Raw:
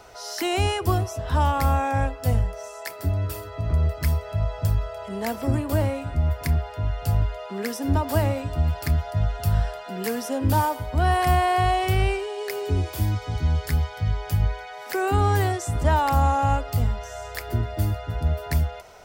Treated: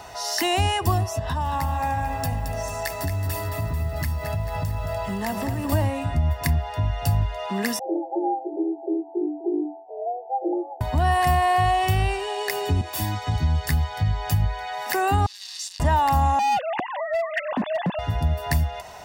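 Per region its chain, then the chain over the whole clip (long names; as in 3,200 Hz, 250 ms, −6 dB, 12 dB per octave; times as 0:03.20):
0:01.19–0:05.72: downward compressor 4 to 1, threshold −30 dBFS + feedback echo at a low word length 221 ms, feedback 55%, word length 9 bits, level −7 dB
0:07.79–0:10.81: Chebyshev low-pass with heavy ripple 580 Hz, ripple 9 dB + frequency shifter +250 Hz
0:12.81–0:13.27: high-pass filter 330 Hz 6 dB per octave + multiband upward and downward expander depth 40%
0:15.26–0:15.80: sign of each sample alone + four-pole ladder band-pass 5,100 Hz, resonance 55% + high-shelf EQ 6,000 Hz −7 dB
0:16.39–0:17.99: three sine waves on the formant tracks + hard clipping −24.5 dBFS
whole clip: high-pass filter 87 Hz 6 dB per octave; comb filter 1.1 ms, depth 54%; downward compressor 2 to 1, threshold −29 dBFS; level +6.5 dB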